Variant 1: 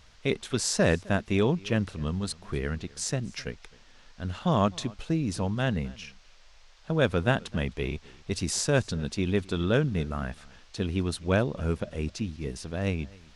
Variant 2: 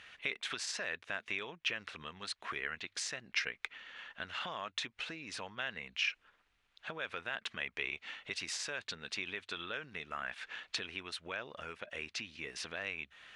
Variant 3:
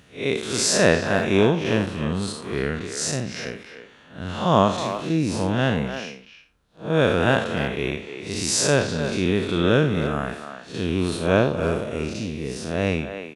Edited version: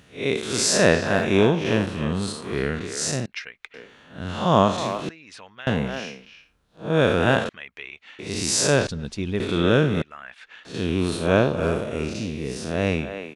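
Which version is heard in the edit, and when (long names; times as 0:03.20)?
3
0:03.26–0:03.74: punch in from 2
0:05.09–0:05.67: punch in from 2
0:07.49–0:08.19: punch in from 2
0:08.87–0:09.40: punch in from 1
0:10.02–0:10.65: punch in from 2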